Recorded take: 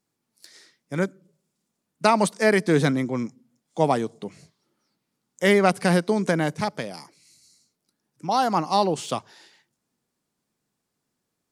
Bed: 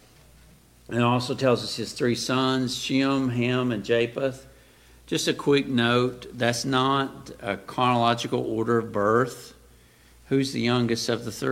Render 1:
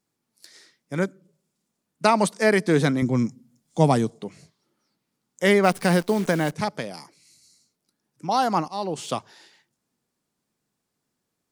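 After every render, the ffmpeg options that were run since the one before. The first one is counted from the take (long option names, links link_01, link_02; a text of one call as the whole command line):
ffmpeg -i in.wav -filter_complex "[0:a]asettb=1/sr,asplit=3[link_01][link_02][link_03];[link_01]atrim=end=3.024[link_04];[link_02]atrim=start=3.02:end=4.1,asetpts=PTS-STARTPTS,afade=type=in:duration=0.004:curve=qsin,afade=type=out:start_time=1.076:duration=0.004:curve=qsin,bass=frequency=250:gain=10,treble=frequency=4000:gain=6[link_05];[link_03]atrim=start=4.096[link_06];[link_04][link_05]acrossfade=duration=0.004:curve1=hsin:curve2=qsin[link_07];[link_07][link_06]acrossfade=duration=0.004:curve1=qsin:curve2=hsin,asplit=3[link_08][link_09][link_10];[link_08]afade=type=out:start_time=5.63:duration=0.02[link_11];[link_09]acrusher=bits=7:dc=4:mix=0:aa=0.000001,afade=type=in:start_time=5.63:duration=0.02,afade=type=out:start_time=6.51:duration=0.02[link_12];[link_10]afade=type=in:start_time=6.51:duration=0.02[link_13];[link_11][link_12][link_13]amix=inputs=3:normalize=0,asplit=2[link_14][link_15];[link_14]atrim=end=8.68,asetpts=PTS-STARTPTS,afade=type=out:start_time=8.676:duration=0.004:curve=hsin:silence=0.125893[link_16];[link_15]atrim=start=8.68,asetpts=PTS-STARTPTS,afade=type=in:duration=0.42:silence=0.125893[link_17];[link_16][link_17]concat=n=2:v=0:a=1" out.wav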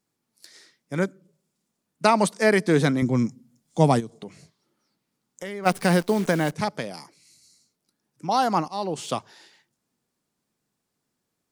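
ffmpeg -i in.wav -filter_complex "[0:a]asplit=3[link_01][link_02][link_03];[link_01]afade=type=out:start_time=3.99:duration=0.02[link_04];[link_02]acompressor=threshold=-32dB:ratio=5:attack=3.2:release=140:knee=1:detection=peak,afade=type=in:start_time=3.99:duration=0.02,afade=type=out:start_time=5.65:duration=0.02[link_05];[link_03]afade=type=in:start_time=5.65:duration=0.02[link_06];[link_04][link_05][link_06]amix=inputs=3:normalize=0" out.wav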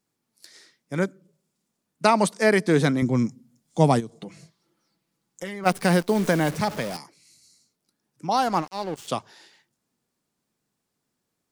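ffmpeg -i in.wav -filter_complex "[0:a]asettb=1/sr,asplit=3[link_01][link_02][link_03];[link_01]atrim=end=4.164[link_04];[link_02]atrim=start=4.16:end=5.64,asetpts=PTS-STARTPTS,afade=type=in:duration=0.004:curve=qsin,afade=type=out:start_time=1.476:duration=0.004:curve=qsin,aecho=1:1:6:0.53,atrim=end_sample=65268[link_05];[link_03]atrim=start=5.636[link_06];[link_04][link_05]acrossfade=duration=0.004:curve1=hsin:curve2=qsin[link_07];[link_07][link_06]acrossfade=duration=0.004:curve1=qsin:curve2=hsin,asettb=1/sr,asplit=3[link_08][link_09][link_10];[link_08]atrim=end=6.154[link_11];[link_09]atrim=start=6.15:end=6.97,asetpts=PTS-STARTPTS,afade=type=in:duration=0.004:curve=qsin,afade=type=out:start_time=0.816:duration=0.004:curve=qsin,aeval=exprs='val(0)+0.5*0.0266*sgn(val(0))':channel_layout=same[link_12];[link_10]atrim=start=6.966[link_13];[link_11][link_12]acrossfade=duration=0.004:curve1=hsin:curve2=qsin[link_14];[link_14][link_13]acrossfade=duration=0.004:curve1=qsin:curve2=hsin,asettb=1/sr,asplit=3[link_15][link_16][link_17];[link_15]atrim=end=8.374[link_18];[link_16]atrim=start=8.37:end=9.08,asetpts=PTS-STARTPTS,afade=type=in:duration=0.004:curve=qsin,afade=type=out:start_time=0.706:duration=0.004:curve=qsin,aeval=exprs='sgn(val(0))*max(abs(val(0))-0.0133,0)':channel_layout=same[link_19];[link_17]atrim=start=9.076[link_20];[link_18][link_19]acrossfade=duration=0.004:curve1=hsin:curve2=qsin[link_21];[link_21][link_20]acrossfade=duration=0.004:curve1=qsin:curve2=hsin" out.wav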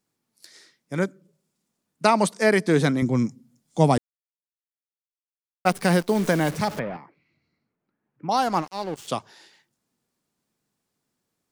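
ffmpeg -i in.wav -filter_complex "[0:a]asettb=1/sr,asplit=3[link_01][link_02][link_03];[link_01]atrim=end=6.794[link_04];[link_02]atrim=start=6.79:end=8.29,asetpts=PTS-STARTPTS,afade=type=in:duration=0.004:curve=qsin,afade=type=out:start_time=1.496:duration=0.004:curve=qsin,lowpass=frequency=2300:width=0.5412,lowpass=frequency=2300:width=1.3066[link_05];[link_03]atrim=start=8.286[link_06];[link_04][link_05]acrossfade=duration=0.004:curve1=hsin:curve2=qsin[link_07];[link_07][link_06]acrossfade=duration=0.004:curve1=qsin:curve2=hsin,asplit=3[link_08][link_09][link_10];[link_08]atrim=end=3.98,asetpts=PTS-STARTPTS,afade=type=out:start_time=3.976:duration=0.004:curve=hsin[link_11];[link_09]atrim=start=3.98:end=5.65,asetpts=PTS-STARTPTS,volume=0[link_12];[link_10]atrim=start=5.65,asetpts=PTS-STARTPTS,afade=type=in:duration=0.004:curve=hsin[link_13];[link_11][link_12][link_13]concat=n=3:v=0:a=1" out.wav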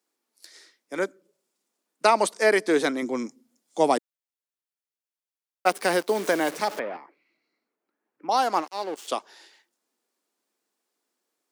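ffmpeg -i in.wav -af "highpass=frequency=300:width=0.5412,highpass=frequency=300:width=1.3066" out.wav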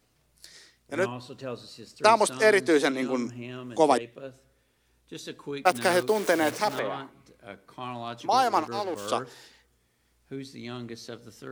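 ffmpeg -i in.wav -i bed.wav -filter_complex "[1:a]volume=-15dB[link_01];[0:a][link_01]amix=inputs=2:normalize=0" out.wav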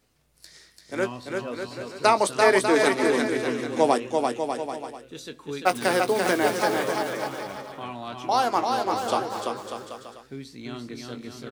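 ffmpeg -i in.wav -filter_complex "[0:a]asplit=2[link_01][link_02];[link_02]adelay=21,volume=-12dB[link_03];[link_01][link_03]amix=inputs=2:normalize=0,aecho=1:1:340|595|786.2|929.7|1037:0.631|0.398|0.251|0.158|0.1" out.wav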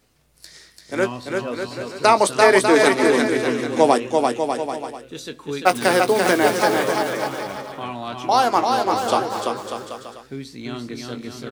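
ffmpeg -i in.wav -af "volume=5.5dB,alimiter=limit=-2dB:level=0:latency=1" out.wav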